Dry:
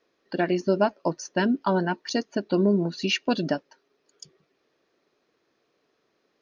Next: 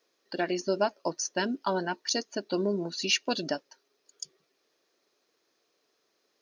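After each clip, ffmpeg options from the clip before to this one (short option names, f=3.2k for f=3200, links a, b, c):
-af "bass=f=250:g=-9,treble=f=4k:g=12,volume=-4dB"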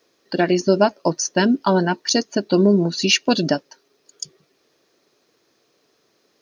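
-af "equalizer=f=110:w=0.56:g=11.5,volume=9dB"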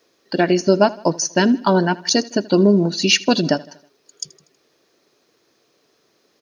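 -af "aecho=1:1:80|160|240|320:0.0891|0.0455|0.0232|0.0118,volume=1.5dB"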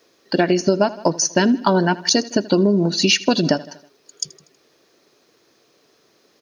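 -af "acompressor=threshold=-16dB:ratio=5,volume=3.5dB"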